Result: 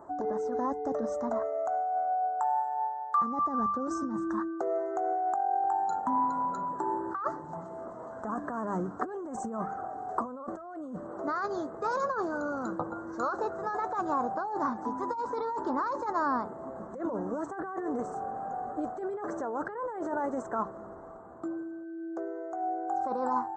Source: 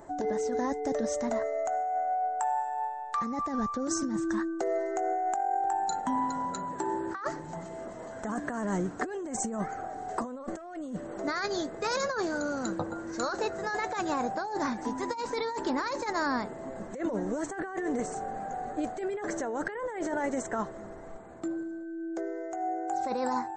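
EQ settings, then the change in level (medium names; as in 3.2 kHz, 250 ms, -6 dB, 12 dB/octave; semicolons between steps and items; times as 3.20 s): high-pass 50 Hz; resonant high shelf 1.7 kHz -11.5 dB, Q 3; hum notches 50/100/150/200 Hz; -2.5 dB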